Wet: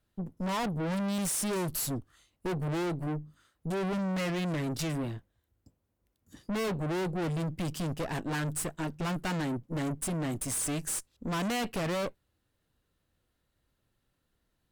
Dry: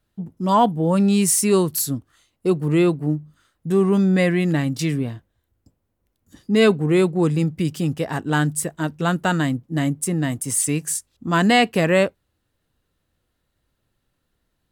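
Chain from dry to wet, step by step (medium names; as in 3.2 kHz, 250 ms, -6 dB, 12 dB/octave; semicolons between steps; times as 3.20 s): 1.18–2.83 s: bass shelf 60 Hz +10 dB; valve stage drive 30 dB, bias 0.75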